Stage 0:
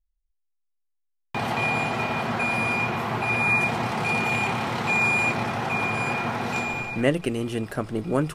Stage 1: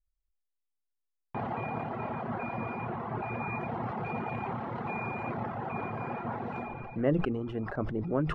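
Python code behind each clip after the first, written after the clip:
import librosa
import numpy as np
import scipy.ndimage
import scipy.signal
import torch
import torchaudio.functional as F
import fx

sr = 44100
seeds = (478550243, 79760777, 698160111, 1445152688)

y = scipy.signal.sosfilt(scipy.signal.butter(2, 1200.0, 'lowpass', fs=sr, output='sos'), x)
y = fx.dereverb_blind(y, sr, rt60_s=0.76)
y = fx.sustainer(y, sr, db_per_s=41.0)
y = y * librosa.db_to_amplitude(-5.5)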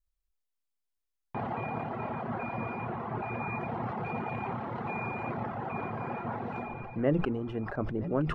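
y = x + 10.0 ** (-18.5 / 20.0) * np.pad(x, (int(969 * sr / 1000.0), 0))[:len(x)]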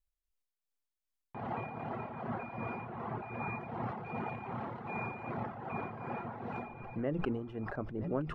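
y = x * (1.0 - 0.54 / 2.0 + 0.54 / 2.0 * np.cos(2.0 * np.pi * 2.6 * (np.arange(len(x)) / sr)))
y = y * librosa.db_to_amplitude(-2.5)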